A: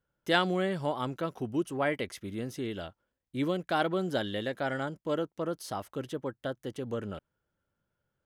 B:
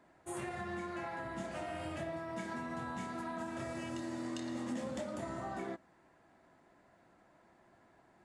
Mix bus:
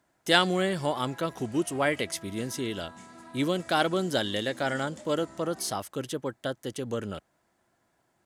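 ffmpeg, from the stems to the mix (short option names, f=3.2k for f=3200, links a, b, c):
-filter_complex "[0:a]highpass=61,volume=2.5dB[a];[1:a]volume=-8dB[b];[a][b]amix=inputs=2:normalize=0,equalizer=f=8.2k:w=0.45:g=10.5"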